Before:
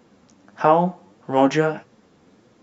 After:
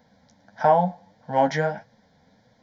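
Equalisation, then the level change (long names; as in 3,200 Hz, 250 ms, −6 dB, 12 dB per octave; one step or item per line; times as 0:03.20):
phaser with its sweep stopped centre 1,800 Hz, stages 8
0.0 dB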